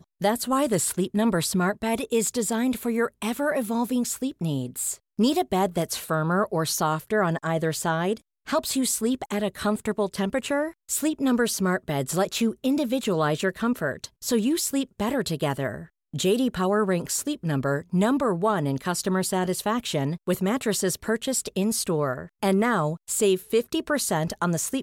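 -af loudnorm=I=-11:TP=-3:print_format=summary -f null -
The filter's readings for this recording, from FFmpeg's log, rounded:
Input Integrated:    -25.3 LUFS
Input True Peak:     -11.4 dBTP
Input LRA:             1.5 LU
Input Threshold:     -35.3 LUFS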